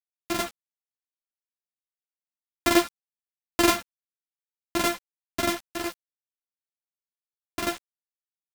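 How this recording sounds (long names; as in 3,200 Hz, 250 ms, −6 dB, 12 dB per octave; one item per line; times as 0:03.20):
a buzz of ramps at a fixed pitch in blocks of 128 samples
sample-and-hold tremolo, depth 55%
a quantiser's noise floor 6 bits, dither none
a shimmering, thickened sound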